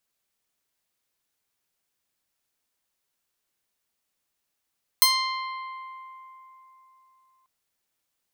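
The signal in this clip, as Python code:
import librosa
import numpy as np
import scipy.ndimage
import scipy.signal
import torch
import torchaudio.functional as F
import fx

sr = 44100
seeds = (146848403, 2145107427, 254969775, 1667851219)

y = fx.pluck(sr, length_s=2.44, note=84, decay_s=3.67, pick=0.43, brightness='bright')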